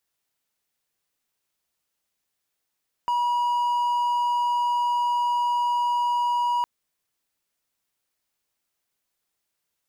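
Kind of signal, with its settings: tone triangle 965 Hz -18.5 dBFS 3.56 s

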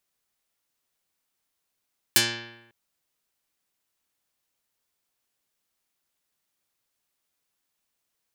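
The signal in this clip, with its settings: plucked string A#2, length 0.55 s, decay 0.96 s, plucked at 0.18, dark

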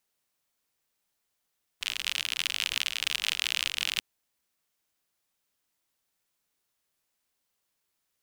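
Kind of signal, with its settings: rain from filtered ticks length 2.19 s, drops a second 58, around 2900 Hz, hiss -26.5 dB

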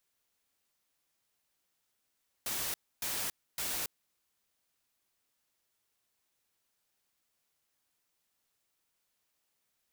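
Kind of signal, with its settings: noise bursts white, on 0.28 s, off 0.28 s, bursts 3, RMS -35.5 dBFS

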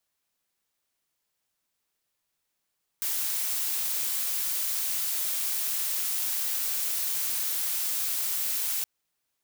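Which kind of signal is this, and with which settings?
noise blue, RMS -29 dBFS 5.82 s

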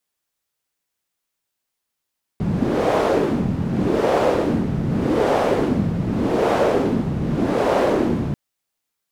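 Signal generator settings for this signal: wind-like swept noise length 5.94 s, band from 160 Hz, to 580 Hz, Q 2, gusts 5, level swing 4 dB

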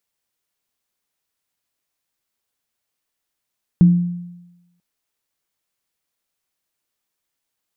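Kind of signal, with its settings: sine partials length 0.99 s, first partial 175 Hz, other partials 312 Hz, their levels -19.5 dB, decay 1.00 s, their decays 0.50 s, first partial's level -5 dB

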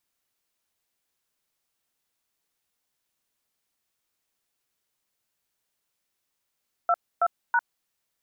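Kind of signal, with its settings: DTMF "22#", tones 51 ms, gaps 0.274 s, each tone -21 dBFS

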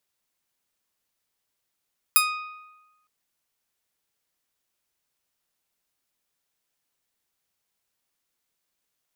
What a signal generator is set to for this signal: plucked string D#6, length 0.91 s, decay 1.13 s, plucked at 0.3, bright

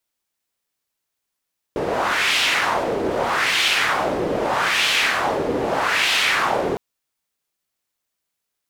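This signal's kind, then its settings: wind-like swept noise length 5.01 s, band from 410 Hz, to 2900 Hz, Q 1.9, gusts 4, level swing 4 dB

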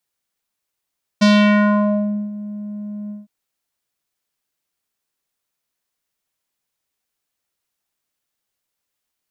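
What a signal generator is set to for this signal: synth note square G#3 12 dB/oct, low-pass 340 Hz, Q 1.9, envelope 4 oct, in 0.95 s, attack 14 ms, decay 1.08 s, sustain -20 dB, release 0.17 s, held 1.89 s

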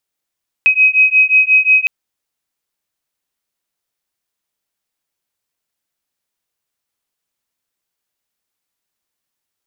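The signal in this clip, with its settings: beating tones 2530 Hz, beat 5.6 Hz, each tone -11 dBFS 1.21 s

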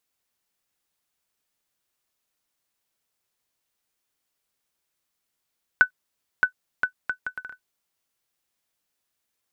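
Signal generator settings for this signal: bouncing ball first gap 0.62 s, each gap 0.65, 1500 Hz, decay 95 ms -5 dBFS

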